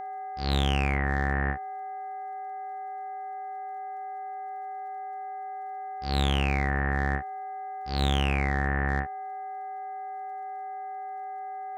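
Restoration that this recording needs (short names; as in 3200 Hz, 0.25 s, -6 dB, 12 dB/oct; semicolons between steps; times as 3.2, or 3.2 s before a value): clip repair -16.5 dBFS; de-click; de-hum 407.9 Hz, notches 5; notch 760 Hz, Q 30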